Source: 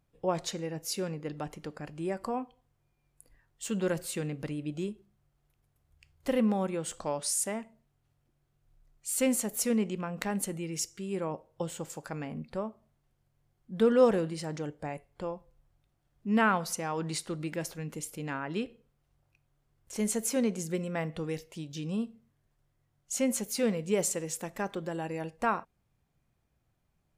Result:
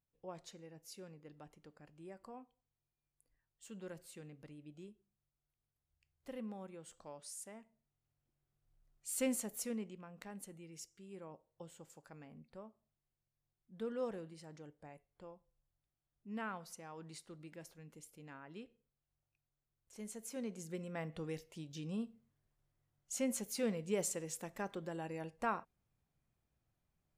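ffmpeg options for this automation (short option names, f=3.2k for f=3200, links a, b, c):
-af "volume=1.5dB,afade=t=in:st=7.52:d=1.72:silence=0.298538,afade=t=out:st=9.24:d=0.74:silence=0.334965,afade=t=in:st=20.2:d=1.05:silence=0.334965"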